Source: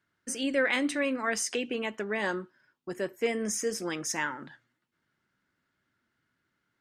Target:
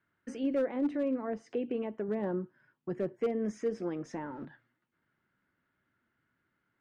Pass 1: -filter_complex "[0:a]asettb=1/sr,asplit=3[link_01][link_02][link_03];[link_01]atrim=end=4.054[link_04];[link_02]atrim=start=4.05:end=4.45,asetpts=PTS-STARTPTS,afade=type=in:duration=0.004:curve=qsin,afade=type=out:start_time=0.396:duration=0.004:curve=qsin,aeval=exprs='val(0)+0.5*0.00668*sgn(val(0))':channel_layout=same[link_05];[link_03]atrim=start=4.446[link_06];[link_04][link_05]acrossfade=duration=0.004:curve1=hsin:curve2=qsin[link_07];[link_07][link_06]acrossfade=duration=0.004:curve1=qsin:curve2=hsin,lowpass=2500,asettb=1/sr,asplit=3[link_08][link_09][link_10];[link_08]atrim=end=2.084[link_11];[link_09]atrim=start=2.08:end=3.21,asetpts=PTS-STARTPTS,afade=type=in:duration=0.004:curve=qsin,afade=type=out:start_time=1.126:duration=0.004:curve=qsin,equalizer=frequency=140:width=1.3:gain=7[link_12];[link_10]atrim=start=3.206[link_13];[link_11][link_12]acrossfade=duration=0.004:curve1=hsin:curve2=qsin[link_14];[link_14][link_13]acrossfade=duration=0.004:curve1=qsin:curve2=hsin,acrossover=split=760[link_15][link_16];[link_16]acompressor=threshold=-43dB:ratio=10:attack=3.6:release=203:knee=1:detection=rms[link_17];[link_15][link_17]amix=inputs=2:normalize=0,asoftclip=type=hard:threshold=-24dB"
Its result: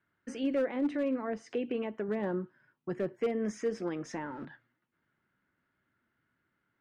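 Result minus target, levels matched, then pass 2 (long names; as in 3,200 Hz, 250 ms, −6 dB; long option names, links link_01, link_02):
downward compressor: peak gain reduction −6.5 dB
-filter_complex "[0:a]asettb=1/sr,asplit=3[link_01][link_02][link_03];[link_01]atrim=end=4.054[link_04];[link_02]atrim=start=4.05:end=4.45,asetpts=PTS-STARTPTS,afade=type=in:duration=0.004:curve=qsin,afade=type=out:start_time=0.396:duration=0.004:curve=qsin,aeval=exprs='val(0)+0.5*0.00668*sgn(val(0))':channel_layout=same[link_05];[link_03]atrim=start=4.446[link_06];[link_04][link_05]acrossfade=duration=0.004:curve1=hsin:curve2=qsin[link_07];[link_07][link_06]acrossfade=duration=0.004:curve1=qsin:curve2=hsin,lowpass=2500,asettb=1/sr,asplit=3[link_08][link_09][link_10];[link_08]atrim=end=2.084[link_11];[link_09]atrim=start=2.08:end=3.21,asetpts=PTS-STARTPTS,afade=type=in:duration=0.004:curve=qsin,afade=type=out:start_time=1.126:duration=0.004:curve=qsin,equalizer=frequency=140:width=1.3:gain=7[link_12];[link_10]atrim=start=3.206[link_13];[link_11][link_12]acrossfade=duration=0.004:curve1=hsin:curve2=qsin[link_14];[link_14][link_13]acrossfade=duration=0.004:curve1=qsin:curve2=hsin,acrossover=split=760[link_15][link_16];[link_16]acompressor=threshold=-50dB:ratio=10:attack=3.6:release=203:knee=1:detection=rms[link_17];[link_15][link_17]amix=inputs=2:normalize=0,asoftclip=type=hard:threshold=-24dB"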